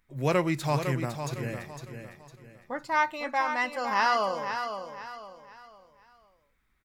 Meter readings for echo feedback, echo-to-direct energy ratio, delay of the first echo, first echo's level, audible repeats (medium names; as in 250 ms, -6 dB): 35%, -7.5 dB, 506 ms, -8.0 dB, 3